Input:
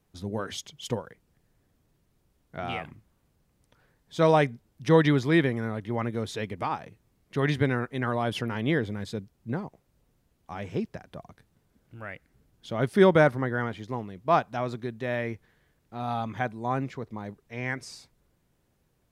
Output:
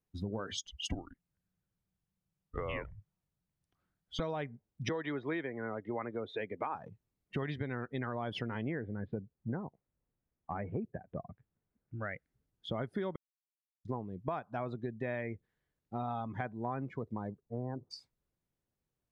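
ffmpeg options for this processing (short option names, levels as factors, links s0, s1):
-filter_complex "[0:a]asettb=1/sr,asplit=3[s0][s1][s2];[s0]atrim=end=0.664[s3];[s1]atrim=start=0.66:end=4.2,asetpts=PTS-STARTPTS,afade=t=in:d=0.004:c=qsin,afade=t=out:st=3.536:d=0.004:c=qsin,afreqshift=-210[s4];[s2]atrim=start=4.196[s5];[s3][s4]acrossfade=d=0.004:c1=hsin:c2=qsin[s6];[s6][s5]acrossfade=d=0.004:c1=qsin:c2=hsin,asettb=1/sr,asplit=3[s7][s8][s9];[s7]atrim=end=4.894[s10];[s8]atrim=start=4.89:end=6.75,asetpts=PTS-STARTPTS,afade=t=in:d=0.004:c=qsin,afade=t=out:st=1.856:d=0.004:c=qsin,acrossover=split=290 3700:gain=0.224 1 0.126[s11][s12][s13];[s11][s12][s13]amix=inputs=3:normalize=0[s14];[s9]atrim=start=6.746[s15];[s10][s14]acrossfade=d=0.004:c1=hsin:c2=qsin[s16];[s16][s15]acrossfade=d=0.004:c1=qsin:c2=hsin,asettb=1/sr,asplit=3[s17][s18][s19];[s17]atrim=end=8.654[s20];[s18]atrim=start=8.65:end=12.11,asetpts=PTS-STARTPTS,afade=t=in:d=0.004:c=qsin,afade=t=out:st=3.456:d=0.004:c=qsin,lowpass=f=2400:w=0.5412,lowpass=f=2400:w=1.3066[s21];[s19]atrim=start=12.106[s22];[s20][s21]acrossfade=d=0.004:c1=hsin:c2=qsin[s23];[s23][s22]acrossfade=d=0.004:c1=qsin:c2=hsin,asettb=1/sr,asplit=3[s24][s25][s26];[s24]atrim=end=17.404[s27];[s25]atrim=start=17.4:end=17.91,asetpts=PTS-STARTPTS,afade=t=in:d=0.004:c=qsin,afade=t=out:st=0.506:d=0.004:c=qsin,lowpass=f=1000:w=0.5412,lowpass=f=1000:w=1.3066[s28];[s26]atrim=start=17.906[s29];[s27][s28]acrossfade=d=0.004:c1=hsin:c2=qsin[s30];[s30][s29]acrossfade=d=0.004:c1=qsin:c2=hsin,asplit=3[s31][s32][s33];[s31]atrim=end=13.16,asetpts=PTS-STARTPTS,afade=t=out:st=13.156:d=0.004:c=hsin[s34];[s32]atrim=start=13.16:end=13.85,asetpts=PTS-STARTPTS,volume=0[s35];[s33]atrim=start=13.85,asetpts=PTS-STARTPTS,afade=t=in:d=0.004:c=hsin[s36];[s34][s35][s36]concat=n=3:v=0:a=1,afftdn=nr=22:nf=-41,alimiter=limit=0.133:level=0:latency=1:release=329,acompressor=threshold=0.0112:ratio=5,volume=1.58"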